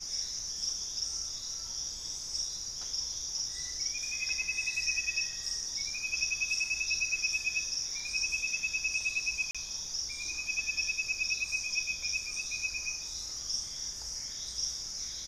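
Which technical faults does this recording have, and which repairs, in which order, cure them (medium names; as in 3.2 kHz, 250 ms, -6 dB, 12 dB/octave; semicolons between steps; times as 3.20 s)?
9.51–9.55 s: dropout 36 ms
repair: interpolate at 9.51 s, 36 ms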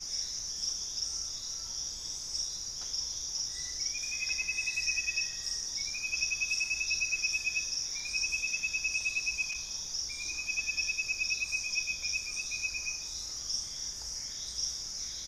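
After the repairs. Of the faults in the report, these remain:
nothing left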